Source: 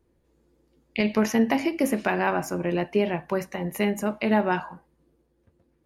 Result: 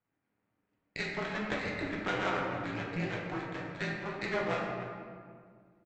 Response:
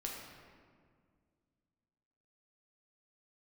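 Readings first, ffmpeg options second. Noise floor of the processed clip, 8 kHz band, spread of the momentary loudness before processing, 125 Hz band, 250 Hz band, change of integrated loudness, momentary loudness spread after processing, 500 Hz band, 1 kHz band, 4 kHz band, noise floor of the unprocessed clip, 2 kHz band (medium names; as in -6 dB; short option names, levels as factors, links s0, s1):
-83 dBFS, -16.5 dB, 7 LU, -6.5 dB, -14.0 dB, -10.0 dB, 12 LU, -11.0 dB, -8.5 dB, -5.0 dB, -68 dBFS, -4.5 dB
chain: -filter_complex "[0:a]highpass=f=330:t=q:w=0.5412,highpass=f=330:t=q:w=1.307,lowpass=f=2700:t=q:w=0.5176,lowpass=f=2700:t=q:w=0.7071,lowpass=f=2700:t=q:w=1.932,afreqshift=-240,tiltshelf=f=1100:g=-4.5,aresample=16000,aeval=exprs='max(val(0),0)':c=same,aresample=44100,highpass=f=150:p=1,asplit=2[s0][s1];[s1]adelay=291.5,volume=0.178,highshelf=f=4000:g=-6.56[s2];[s0][s2]amix=inputs=2:normalize=0[s3];[1:a]atrim=start_sample=2205[s4];[s3][s4]afir=irnorm=-1:irlink=0"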